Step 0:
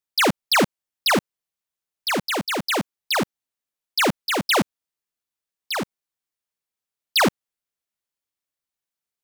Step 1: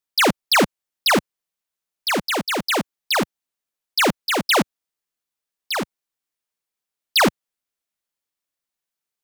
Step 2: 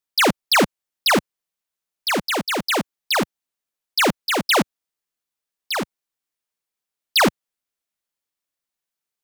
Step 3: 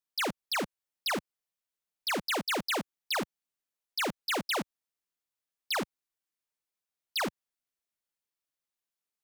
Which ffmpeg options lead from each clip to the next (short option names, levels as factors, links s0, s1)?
-af "equalizer=f=89:t=o:w=1.4:g=-4.5,volume=1.26"
-af anull
-af "alimiter=limit=0.075:level=0:latency=1:release=85,volume=0.501"